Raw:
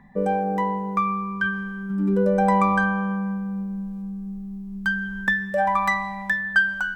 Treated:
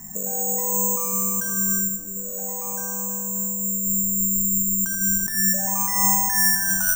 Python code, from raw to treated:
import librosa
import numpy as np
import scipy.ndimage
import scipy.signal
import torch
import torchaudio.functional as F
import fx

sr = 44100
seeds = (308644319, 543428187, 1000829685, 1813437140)

y = scipy.signal.sosfilt(scipy.signal.butter(2, 2500.0, 'lowpass', fs=sr, output='sos'), x)
y = fx.low_shelf(y, sr, hz=370.0, db=6.5)
y = fx.over_compress(y, sr, threshold_db=-28.0, ratio=-1.0)
y = np.sign(y) * np.maximum(np.abs(y) - 10.0 ** (-56.5 / 20.0), 0.0)
y = fx.echo_filtered(y, sr, ms=83, feedback_pct=85, hz=1700.0, wet_db=-5.5)
y = (np.kron(scipy.signal.resample_poly(y, 1, 6), np.eye(6)[0]) * 6)[:len(y)]
y = y * librosa.db_to_amplitude(-4.0)